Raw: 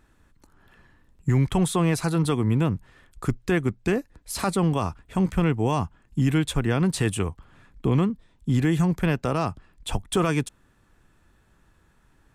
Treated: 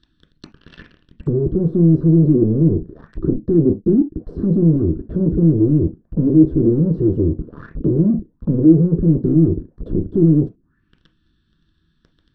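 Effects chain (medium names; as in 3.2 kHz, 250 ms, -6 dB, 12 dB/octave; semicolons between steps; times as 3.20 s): FFT filter 330 Hz 0 dB, 510 Hz -21 dB, 1.8 kHz +1 dB; waveshaping leveller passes 5; saturation -26 dBFS, distortion -11 dB; reverberation, pre-delay 3 ms, DRR 6 dB; touch-sensitive low-pass 350–3600 Hz down, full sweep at -19.5 dBFS; trim -2.5 dB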